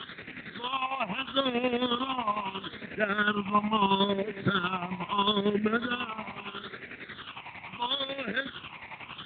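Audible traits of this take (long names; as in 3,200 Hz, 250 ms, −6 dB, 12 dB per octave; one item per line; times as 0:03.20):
a quantiser's noise floor 6 bits, dither triangular
chopped level 11 Hz, depth 60%, duty 45%
phaser sweep stages 8, 0.76 Hz, lowest notch 440–1,000 Hz
AMR narrowband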